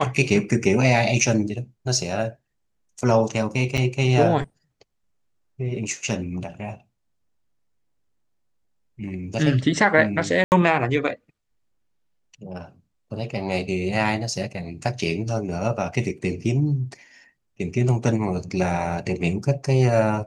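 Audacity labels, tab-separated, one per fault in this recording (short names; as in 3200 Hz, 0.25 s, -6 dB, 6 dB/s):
3.770000	3.780000	gap 7.2 ms
10.440000	10.520000	gap 79 ms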